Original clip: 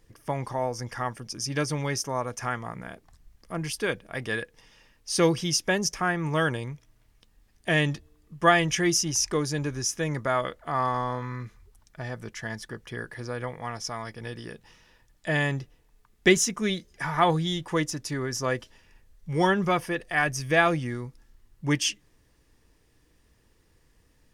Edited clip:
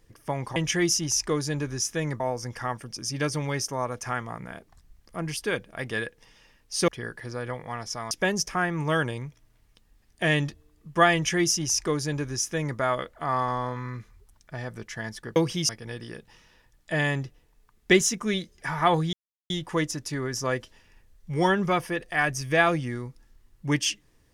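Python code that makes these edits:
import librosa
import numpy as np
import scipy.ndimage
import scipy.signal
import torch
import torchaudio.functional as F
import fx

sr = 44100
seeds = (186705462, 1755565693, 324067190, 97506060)

y = fx.edit(x, sr, fx.swap(start_s=5.24, length_s=0.33, other_s=12.82, other_length_s=1.23),
    fx.duplicate(start_s=8.6, length_s=1.64, to_s=0.56),
    fx.insert_silence(at_s=17.49, length_s=0.37), tone=tone)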